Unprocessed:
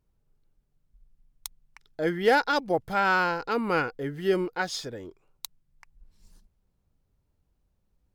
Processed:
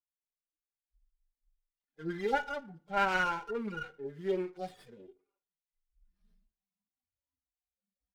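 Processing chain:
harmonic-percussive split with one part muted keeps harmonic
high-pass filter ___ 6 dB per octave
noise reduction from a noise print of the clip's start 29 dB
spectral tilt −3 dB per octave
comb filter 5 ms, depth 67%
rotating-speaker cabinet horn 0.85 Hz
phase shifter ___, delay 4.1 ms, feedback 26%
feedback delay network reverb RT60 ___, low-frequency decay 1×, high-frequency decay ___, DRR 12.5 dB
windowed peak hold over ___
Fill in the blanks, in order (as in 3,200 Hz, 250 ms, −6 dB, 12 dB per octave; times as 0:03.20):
1,500 Hz, 1.9 Hz, 0.46 s, 0.65×, 5 samples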